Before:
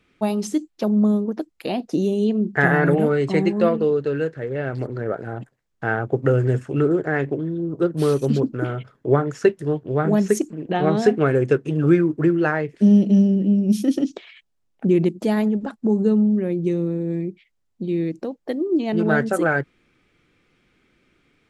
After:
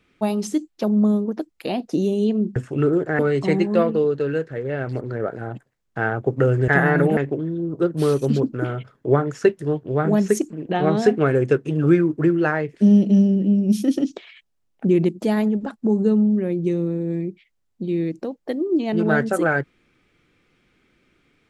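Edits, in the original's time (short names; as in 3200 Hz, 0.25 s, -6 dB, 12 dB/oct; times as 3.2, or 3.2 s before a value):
2.56–3.05 swap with 6.54–7.17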